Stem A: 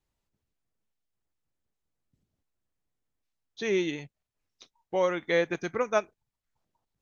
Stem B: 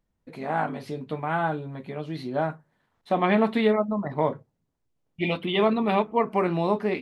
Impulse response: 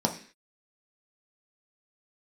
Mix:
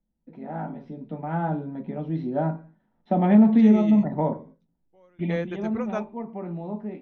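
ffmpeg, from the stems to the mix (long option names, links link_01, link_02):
-filter_complex "[0:a]volume=-6dB[link_01];[1:a]lowpass=3800,volume=-8.5dB,afade=type=in:start_time=0.96:duration=0.71:silence=0.446684,afade=type=out:start_time=4.83:duration=0.64:silence=0.237137,asplit=3[link_02][link_03][link_04];[link_03]volume=-9.5dB[link_05];[link_04]apad=whole_len=309309[link_06];[link_01][link_06]sidechaingate=range=-27dB:threshold=-57dB:ratio=16:detection=peak[link_07];[2:a]atrim=start_sample=2205[link_08];[link_05][link_08]afir=irnorm=-1:irlink=0[link_09];[link_07][link_02][link_09]amix=inputs=3:normalize=0,aemphasis=mode=reproduction:type=bsi,acrossover=split=230|3000[link_10][link_11][link_12];[link_11]acompressor=threshold=-19dB:ratio=6[link_13];[link_10][link_13][link_12]amix=inputs=3:normalize=0"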